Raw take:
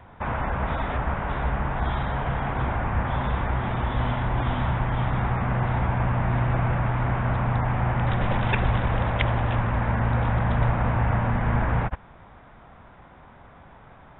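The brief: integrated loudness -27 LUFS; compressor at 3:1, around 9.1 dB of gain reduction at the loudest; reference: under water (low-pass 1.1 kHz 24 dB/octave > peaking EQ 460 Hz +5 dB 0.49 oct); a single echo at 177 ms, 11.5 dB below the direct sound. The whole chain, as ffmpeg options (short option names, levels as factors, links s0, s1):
-af "acompressor=threshold=0.0282:ratio=3,lowpass=f=1100:w=0.5412,lowpass=f=1100:w=1.3066,equalizer=f=460:t=o:w=0.49:g=5,aecho=1:1:177:0.266,volume=2.11"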